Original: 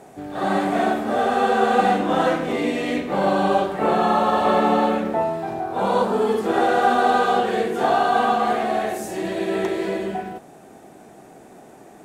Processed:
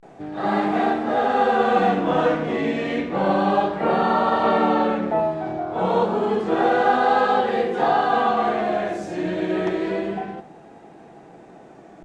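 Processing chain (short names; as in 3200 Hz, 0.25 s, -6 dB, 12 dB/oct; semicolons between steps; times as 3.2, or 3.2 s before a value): vibrato 0.3 Hz 85 cents; air absorption 120 m; shoebox room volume 2800 m³, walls furnished, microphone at 0.7 m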